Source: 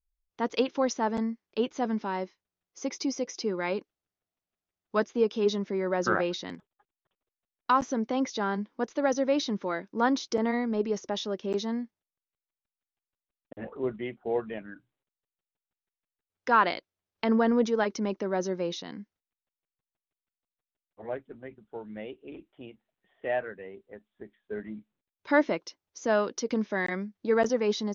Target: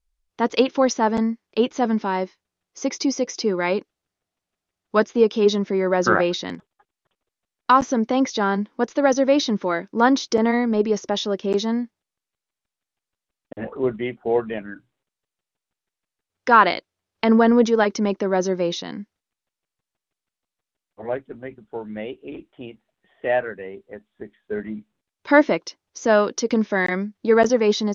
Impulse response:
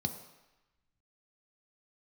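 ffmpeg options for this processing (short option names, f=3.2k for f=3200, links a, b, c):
-af "lowpass=10k,volume=8.5dB"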